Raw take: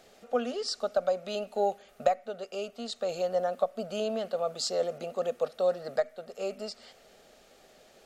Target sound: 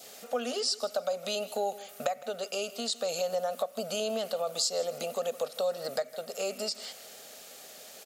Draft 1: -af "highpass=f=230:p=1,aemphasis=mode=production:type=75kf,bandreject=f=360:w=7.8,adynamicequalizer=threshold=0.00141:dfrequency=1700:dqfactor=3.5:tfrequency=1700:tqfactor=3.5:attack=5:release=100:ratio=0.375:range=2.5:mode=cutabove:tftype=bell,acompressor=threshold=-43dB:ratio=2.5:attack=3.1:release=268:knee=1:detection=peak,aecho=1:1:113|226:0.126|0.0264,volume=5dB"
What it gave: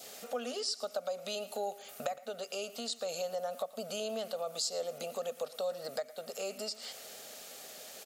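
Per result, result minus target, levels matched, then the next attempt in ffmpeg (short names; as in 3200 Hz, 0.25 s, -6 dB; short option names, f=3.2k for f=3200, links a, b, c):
echo 47 ms early; compressor: peak gain reduction +5.5 dB
-af "highpass=f=230:p=1,aemphasis=mode=production:type=75kf,bandreject=f=360:w=7.8,adynamicequalizer=threshold=0.00141:dfrequency=1700:dqfactor=3.5:tfrequency=1700:tqfactor=3.5:attack=5:release=100:ratio=0.375:range=2.5:mode=cutabove:tftype=bell,acompressor=threshold=-43dB:ratio=2.5:attack=3.1:release=268:knee=1:detection=peak,aecho=1:1:160|320:0.126|0.0264,volume=5dB"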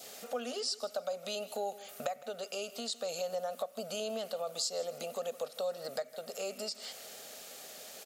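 compressor: peak gain reduction +5.5 dB
-af "highpass=f=230:p=1,aemphasis=mode=production:type=75kf,bandreject=f=360:w=7.8,adynamicequalizer=threshold=0.00141:dfrequency=1700:dqfactor=3.5:tfrequency=1700:tqfactor=3.5:attack=5:release=100:ratio=0.375:range=2.5:mode=cutabove:tftype=bell,acompressor=threshold=-34dB:ratio=2.5:attack=3.1:release=268:knee=1:detection=peak,aecho=1:1:160|320:0.126|0.0264,volume=5dB"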